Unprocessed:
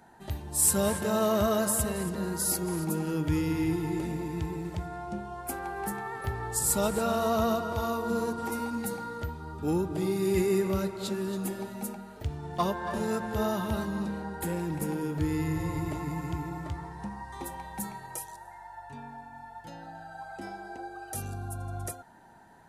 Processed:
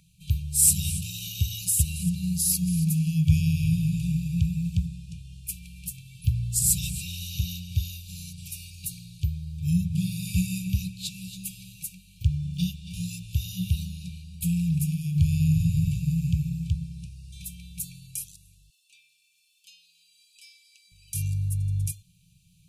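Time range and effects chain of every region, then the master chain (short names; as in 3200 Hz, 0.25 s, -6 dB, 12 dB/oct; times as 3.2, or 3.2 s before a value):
18.7–20.92 HPF 550 Hz 24 dB/oct + doubler 23 ms -14 dB
whole clip: FFT band-reject 190–2300 Hz; dynamic EQ 120 Hz, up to +7 dB, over -44 dBFS, Q 0.76; gain +5 dB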